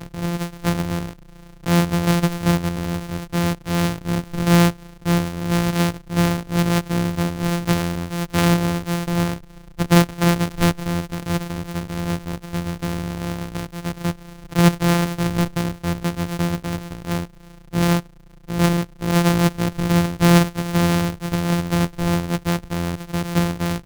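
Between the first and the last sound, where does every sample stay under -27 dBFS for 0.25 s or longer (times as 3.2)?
1.13–1.66
4.71–5.06
9.36–9.79
14.12–14.52
17.25–17.74
18–18.49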